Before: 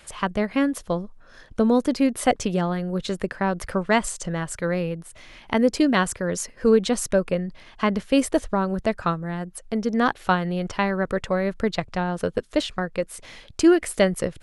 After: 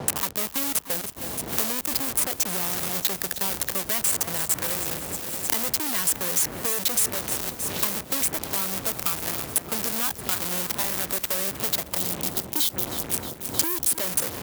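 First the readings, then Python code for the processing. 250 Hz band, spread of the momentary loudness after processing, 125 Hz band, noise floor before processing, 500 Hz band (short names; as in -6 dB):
-14.0 dB, 5 LU, -9.5 dB, -50 dBFS, -12.5 dB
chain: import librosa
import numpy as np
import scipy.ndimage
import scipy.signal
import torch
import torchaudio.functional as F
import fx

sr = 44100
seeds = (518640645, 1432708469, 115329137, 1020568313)

p1 = fx.delta_hold(x, sr, step_db=-27.5)
p2 = fx.dmg_wind(p1, sr, seeds[0], corner_hz=97.0, level_db=-23.0)
p3 = scipy.signal.sosfilt(scipy.signal.butter(4, 44.0, 'highpass', fs=sr, output='sos'), p2)
p4 = fx.high_shelf(p3, sr, hz=8000.0, db=6.0)
p5 = fx.fold_sine(p4, sr, drive_db=17, ceiling_db=4.0)
p6 = p4 + (p5 * librosa.db_to_amplitude(-8.5))
p7 = fx.spec_erase(p6, sr, start_s=11.98, length_s=2.01, low_hz=390.0, high_hz=3000.0)
p8 = fx.fuzz(p7, sr, gain_db=23.0, gate_db=-28.0)
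p9 = fx.riaa(p8, sr, side='recording')
p10 = p9 + fx.echo_feedback(p9, sr, ms=312, feedback_pct=56, wet_db=-15.0, dry=0)
p11 = fx.band_squash(p10, sr, depth_pct=100)
y = p11 * librosa.db_to_amplitude(-15.0)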